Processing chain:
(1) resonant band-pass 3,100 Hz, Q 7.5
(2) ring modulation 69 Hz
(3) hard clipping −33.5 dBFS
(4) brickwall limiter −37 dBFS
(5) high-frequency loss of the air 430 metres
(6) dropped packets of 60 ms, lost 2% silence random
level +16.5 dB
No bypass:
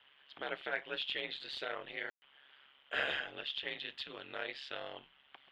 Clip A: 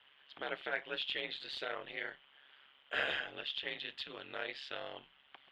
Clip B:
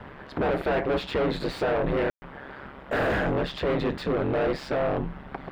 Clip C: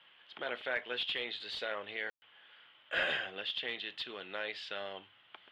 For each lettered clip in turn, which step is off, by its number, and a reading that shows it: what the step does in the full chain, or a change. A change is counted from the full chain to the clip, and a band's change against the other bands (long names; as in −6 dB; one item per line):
6, change in momentary loudness spread +1 LU
1, 4 kHz band −19.5 dB
2, change in momentary loudness spread +1 LU